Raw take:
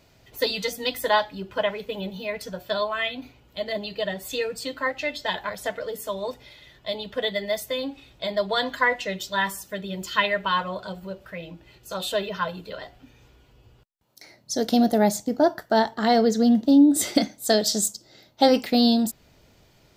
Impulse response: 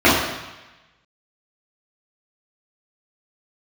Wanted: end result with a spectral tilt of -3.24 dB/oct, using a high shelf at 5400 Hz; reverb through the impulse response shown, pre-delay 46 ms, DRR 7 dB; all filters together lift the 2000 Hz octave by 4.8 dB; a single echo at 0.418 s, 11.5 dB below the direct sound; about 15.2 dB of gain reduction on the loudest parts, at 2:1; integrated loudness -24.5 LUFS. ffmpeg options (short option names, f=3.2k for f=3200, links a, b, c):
-filter_complex "[0:a]equalizer=f=2k:t=o:g=4.5,highshelf=f=5.4k:g=9,acompressor=threshold=-41dB:ratio=2,aecho=1:1:418:0.266,asplit=2[a][b];[1:a]atrim=start_sample=2205,adelay=46[c];[b][c]afir=irnorm=-1:irlink=0,volume=-34.5dB[d];[a][d]amix=inputs=2:normalize=0,volume=9.5dB"